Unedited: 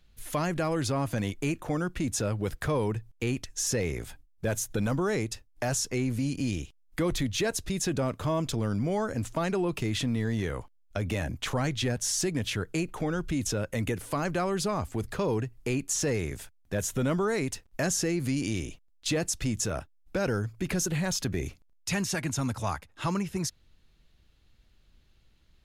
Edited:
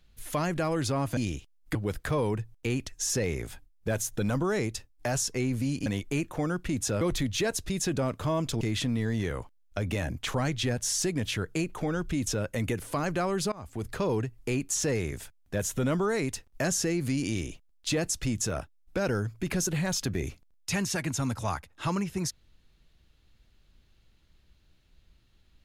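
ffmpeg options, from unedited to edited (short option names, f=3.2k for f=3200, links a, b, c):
-filter_complex "[0:a]asplit=7[a][b][c][d][e][f][g];[a]atrim=end=1.172[h];[b]atrim=start=6.428:end=7.012[i];[c]atrim=start=2.318:end=6.432[j];[d]atrim=start=1.168:end=2.322[k];[e]atrim=start=7.008:end=8.612[l];[f]atrim=start=9.798:end=14.71,asetpts=PTS-STARTPTS,afade=t=out:st=4.908:d=0.004:c=hsin:silence=0.0749894[m];[g]atrim=start=14.71,asetpts=PTS-STARTPTS,afade=t=in:d=0.4:silence=0.0749894[n];[h][i]acrossfade=d=0.004:c1=hsin:c2=hsin[o];[o][j]acrossfade=d=0.004:c1=hsin:c2=hsin[p];[p][k]acrossfade=d=0.004:c1=hsin:c2=hsin[q];[q][l]acrossfade=d=0.004:c1=hsin:c2=hsin[r];[m][n]concat=n=2:v=0:a=1[s];[r][s]acrossfade=d=0.004:c1=hsin:c2=hsin"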